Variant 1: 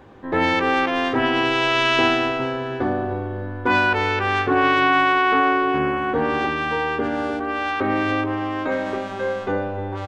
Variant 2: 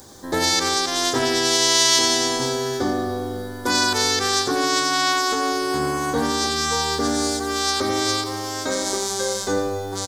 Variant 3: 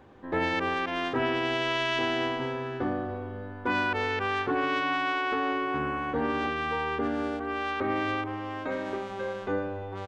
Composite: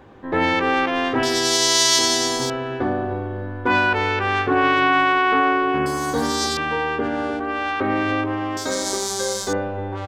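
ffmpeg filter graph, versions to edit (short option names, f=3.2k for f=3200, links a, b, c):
-filter_complex "[1:a]asplit=3[a][b][c];[0:a]asplit=4[d][e][f][g];[d]atrim=end=1.232[h];[a]atrim=start=1.228:end=2.502[i];[e]atrim=start=2.498:end=5.862[j];[b]atrim=start=5.858:end=6.572[k];[f]atrim=start=6.568:end=8.572[l];[c]atrim=start=8.568:end=9.532[m];[g]atrim=start=9.528[n];[h][i]acrossfade=d=0.004:c1=hsin:c2=hsin[o];[o][j]acrossfade=d=0.004:c1=hsin:c2=hsin[p];[p][k]acrossfade=d=0.004:c1=hsin:c2=hsin[q];[q][l]acrossfade=d=0.004:c1=hsin:c2=hsin[r];[r][m]acrossfade=d=0.004:c1=hsin:c2=hsin[s];[s][n]acrossfade=d=0.004:c1=hsin:c2=hsin"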